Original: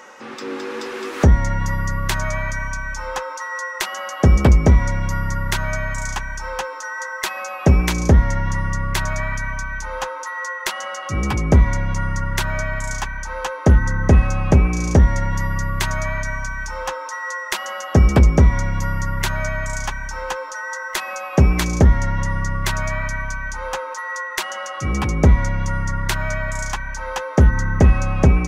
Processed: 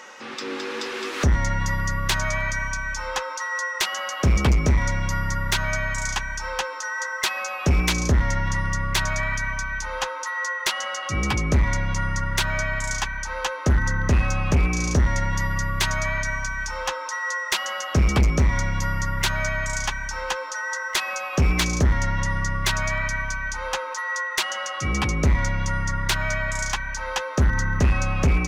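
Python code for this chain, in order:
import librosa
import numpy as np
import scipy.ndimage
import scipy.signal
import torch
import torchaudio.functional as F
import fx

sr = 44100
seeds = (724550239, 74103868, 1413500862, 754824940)

y = fx.peak_eq(x, sr, hz=3800.0, db=8.0, octaves=2.2)
y = np.clip(y, -10.0 ** (-10.5 / 20.0), 10.0 ** (-10.5 / 20.0))
y = y * librosa.db_to_amplitude(-3.5)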